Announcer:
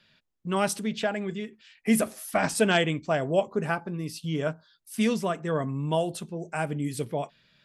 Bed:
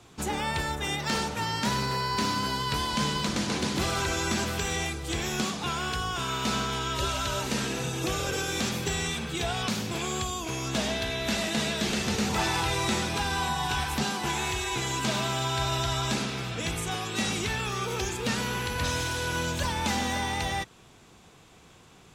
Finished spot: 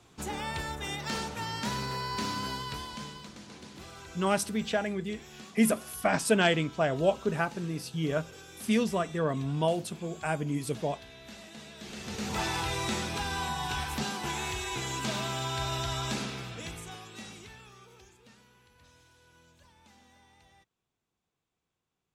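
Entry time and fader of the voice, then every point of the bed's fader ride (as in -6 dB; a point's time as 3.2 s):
3.70 s, -1.5 dB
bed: 2.52 s -5.5 dB
3.35 s -19 dB
11.71 s -19 dB
12.37 s -4.5 dB
16.27 s -4.5 dB
18.53 s -31.5 dB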